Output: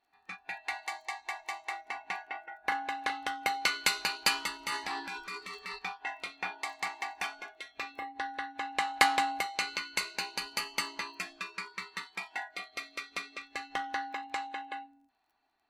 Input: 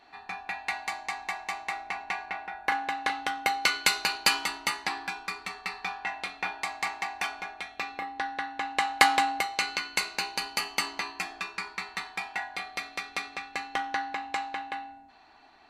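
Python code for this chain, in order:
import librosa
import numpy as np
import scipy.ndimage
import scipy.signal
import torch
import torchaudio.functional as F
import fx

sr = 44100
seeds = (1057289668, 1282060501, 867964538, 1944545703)

y = fx.dmg_crackle(x, sr, seeds[0], per_s=18.0, level_db=-42.0)
y = fx.noise_reduce_blind(y, sr, reduce_db=17)
y = fx.transient(y, sr, attack_db=-5, sustain_db=8, at=(4.57, 5.79))
y = y * 10.0 ** (-4.0 / 20.0)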